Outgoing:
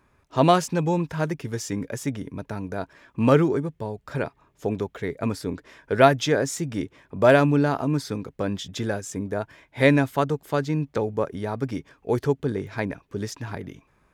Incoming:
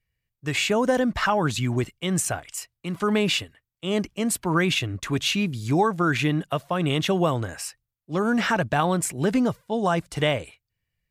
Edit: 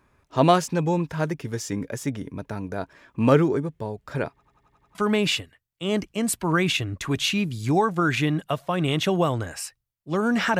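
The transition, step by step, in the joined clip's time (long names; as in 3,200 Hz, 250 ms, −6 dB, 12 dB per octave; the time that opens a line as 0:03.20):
outgoing
0:04.32: stutter in place 0.09 s, 7 plays
0:04.95: continue with incoming from 0:02.97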